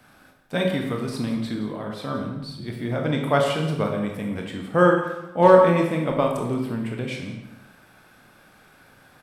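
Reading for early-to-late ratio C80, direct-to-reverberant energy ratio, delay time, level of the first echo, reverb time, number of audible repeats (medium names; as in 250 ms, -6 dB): 6.0 dB, 0.5 dB, 172 ms, -15.5 dB, 0.95 s, 1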